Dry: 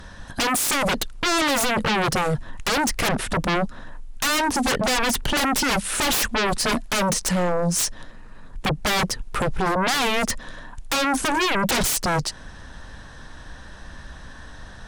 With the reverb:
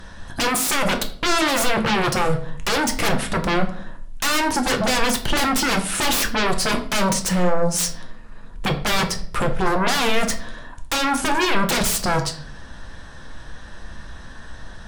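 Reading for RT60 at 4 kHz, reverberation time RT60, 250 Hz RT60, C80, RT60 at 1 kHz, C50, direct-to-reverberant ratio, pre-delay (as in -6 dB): 0.40 s, 0.55 s, 0.70 s, 15.0 dB, 0.45 s, 11.5 dB, 4.5 dB, 6 ms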